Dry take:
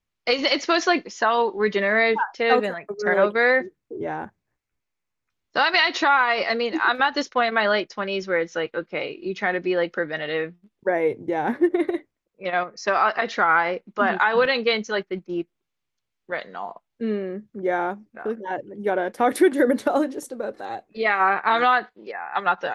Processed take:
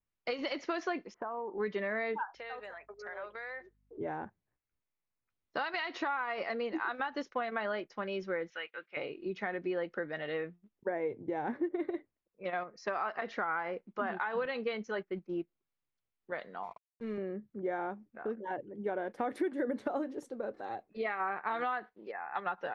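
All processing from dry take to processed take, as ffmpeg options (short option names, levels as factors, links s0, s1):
-filter_complex "[0:a]asettb=1/sr,asplit=3[s0][s1][s2];[s0]atrim=end=1.144[s3];[s1]atrim=start=1.14:end=1.58,asetpts=PTS-STARTPTS,afade=t=in:d=0.004:c=qsin,afade=t=out:st=0.436:d=0.004:c=qsin,lowpass=f=1300:w=0.5412,lowpass=f=1300:w=1.3066,acompressor=threshold=0.0501:ratio=6:attack=3.2:release=140:knee=1:detection=peak[s4];[s2]atrim=start=1.576[s5];[s3][s4]acrossfade=d=0.004:c1=hsin:c2=qsin[s6];[s6][s5]acrossfade=d=0.004:c1=qsin:c2=hsin,asettb=1/sr,asplit=3[s7][s8][s9];[s7]atrim=end=2.354[s10];[s8]atrim=start=2.35:end=3.98,asetpts=PTS-STARTPTS,afade=t=in:d=0.004:c=qsin,afade=t=out:st=1.626:d=0.004:c=qsin,highpass=730,acompressor=threshold=0.02:ratio=3:attack=3.2:release=140:knee=1:detection=peak,aeval=exprs='val(0)+0.000562*(sin(2*PI*50*n/s)+sin(2*PI*2*50*n/s)/2+sin(2*PI*3*50*n/s)/3+sin(2*PI*4*50*n/s)/4+sin(2*PI*5*50*n/s)/5)':c=same[s11];[s9]atrim=start=3.976[s12];[s10][s11]acrossfade=d=0.004:c1=hsin:c2=qsin[s13];[s13][s12]acrossfade=d=0.004:c1=qsin:c2=hsin,asettb=1/sr,asplit=3[s14][s15][s16];[s14]atrim=end=8.504[s17];[s15]atrim=start=8.5:end=8.97,asetpts=PTS-STARTPTS,afade=t=in:d=0.004:c=qsin,afade=t=out:st=0.466:d=0.004:c=qsin,bandpass=f=2500:t=q:w=1.7,acontrast=36[s18];[s16]atrim=start=8.966[s19];[s17][s18]acrossfade=d=0.004:c1=hsin:c2=qsin[s20];[s20][s19]acrossfade=d=0.004:c1=qsin:c2=hsin,asettb=1/sr,asplit=3[s21][s22][s23];[s21]atrim=end=16.634[s24];[s22]atrim=start=16.63:end=17.18,asetpts=PTS-STARTPTS,afade=t=in:d=0.004:c=qsin,afade=t=out:st=0.546:d=0.004:c=qsin,aeval=exprs='sgn(val(0))*max(abs(val(0))-0.00355,0)':c=same,equalizer=f=270:t=o:w=0.72:g=-11.5,aecho=1:1:0.9:0.34,atrim=end_sample=24255[s25];[s23]atrim=start=17.176[s26];[s24][s25]acrossfade=d=0.004:c1=hsin:c2=qsin[s27];[s27][s26]acrossfade=d=0.004:c1=qsin:c2=hsin,adynamicequalizer=threshold=0.00794:dfrequency=3900:dqfactor=2.5:tfrequency=3900:tqfactor=2.5:attack=5:release=100:ratio=0.375:range=2.5:mode=cutabove:tftype=bell,acompressor=threshold=0.0631:ratio=3,aemphasis=mode=reproduction:type=75fm,volume=0.376"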